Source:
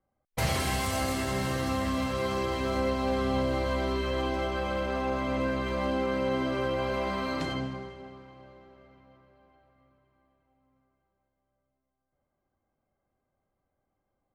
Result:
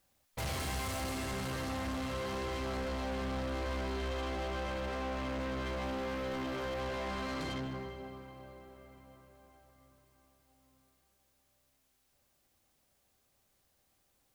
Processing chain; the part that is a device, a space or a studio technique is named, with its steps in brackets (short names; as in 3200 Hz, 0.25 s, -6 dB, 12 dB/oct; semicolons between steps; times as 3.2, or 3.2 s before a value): 5.85–6.81 bell 13000 Hz +11.5 dB 0.24 oct; open-reel tape (soft clip -35.5 dBFS, distortion -7 dB; bell 65 Hz +4 dB; white noise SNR 36 dB)